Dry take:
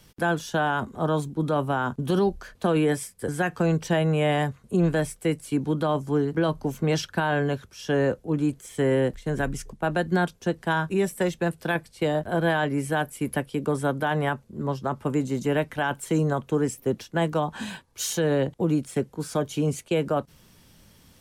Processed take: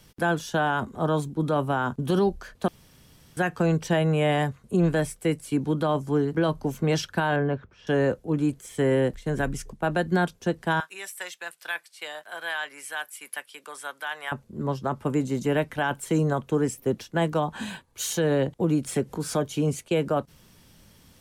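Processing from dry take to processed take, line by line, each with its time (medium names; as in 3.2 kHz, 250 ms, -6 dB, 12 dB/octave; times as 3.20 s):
2.68–3.37 s: room tone
7.36–7.87 s: low-pass 1.8 kHz
10.80–14.32 s: high-pass 1.4 kHz
17.52–18.11 s: peaking EQ 5.3 kHz -6 dB 0.25 oct
18.64–19.37 s: upward compressor, threshold -24 dBFS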